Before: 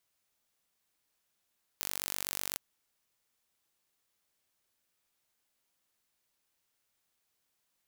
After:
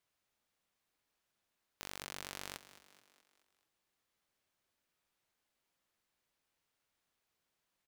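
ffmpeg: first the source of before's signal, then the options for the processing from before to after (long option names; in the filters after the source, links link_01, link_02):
-f lavfi -i "aevalsrc='0.398*eq(mod(n,919),0)':duration=0.77:sample_rate=44100"
-filter_complex "[0:a]highshelf=frequency=5100:gain=-10,asoftclip=type=hard:threshold=-21dB,asplit=6[link_01][link_02][link_03][link_04][link_05][link_06];[link_02]adelay=214,afreqshift=60,volume=-15.5dB[link_07];[link_03]adelay=428,afreqshift=120,volume=-21dB[link_08];[link_04]adelay=642,afreqshift=180,volume=-26.5dB[link_09];[link_05]adelay=856,afreqshift=240,volume=-32dB[link_10];[link_06]adelay=1070,afreqshift=300,volume=-37.6dB[link_11];[link_01][link_07][link_08][link_09][link_10][link_11]amix=inputs=6:normalize=0"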